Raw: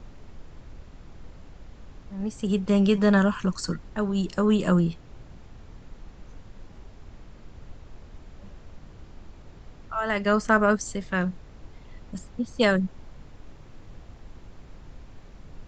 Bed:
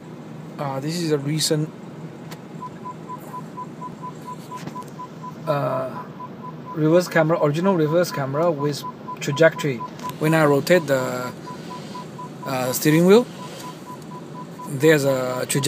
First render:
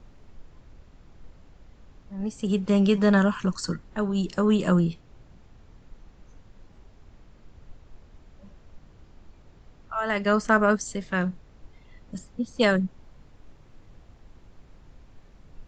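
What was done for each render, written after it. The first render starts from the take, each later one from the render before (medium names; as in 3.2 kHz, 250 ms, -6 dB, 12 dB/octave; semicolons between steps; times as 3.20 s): noise print and reduce 6 dB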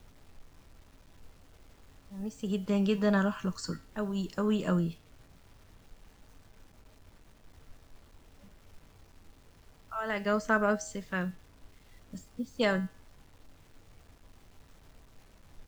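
bit crusher 9-bit; feedback comb 90 Hz, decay 0.42 s, harmonics odd, mix 60%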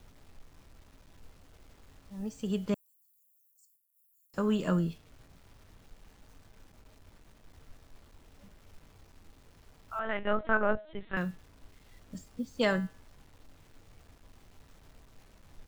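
2.74–4.34 s: inverse Chebyshev high-pass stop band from 2.4 kHz, stop band 80 dB; 9.99–11.17 s: LPC vocoder at 8 kHz pitch kept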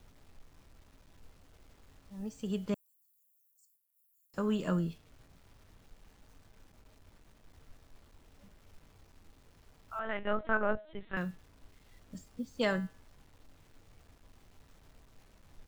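trim -3 dB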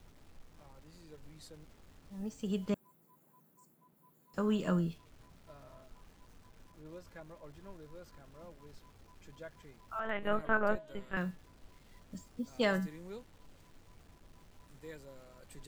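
add bed -34 dB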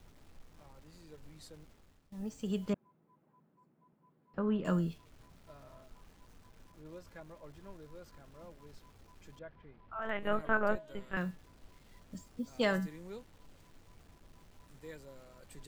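1.59–2.12 s: fade out, to -16 dB; 2.73–4.65 s: distance through air 430 m; 9.39–10.02 s: distance through air 380 m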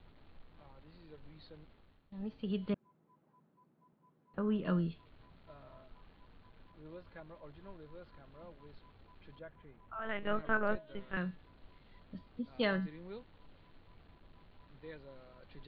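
Chebyshev low-pass 4.3 kHz, order 6; dynamic bell 810 Hz, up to -4 dB, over -49 dBFS, Q 1.2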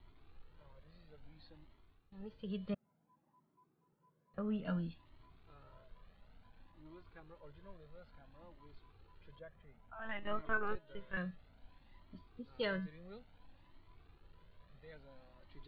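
Shepard-style flanger rising 0.58 Hz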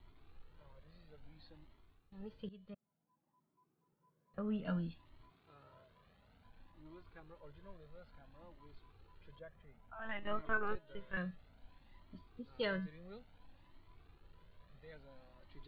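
2.49–4.62 s: fade in, from -17 dB; 5.29–6.43 s: high-pass 160 Hz -> 52 Hz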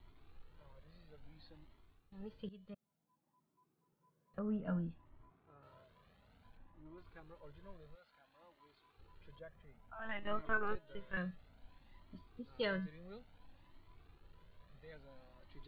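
4.39–5.63 s: low-pass 1.5 kHz; 6.57–6.98 s: Bessel low-pass 1.7 kHz; 7.94–8.97 s: high-pass 1.4 kHz -> 510 Hz 6 dB/octave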